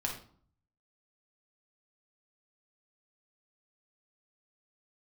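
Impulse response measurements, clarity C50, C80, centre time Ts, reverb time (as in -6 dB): 6.0 dB, 11.0 dB, 25 ms, 0.50 s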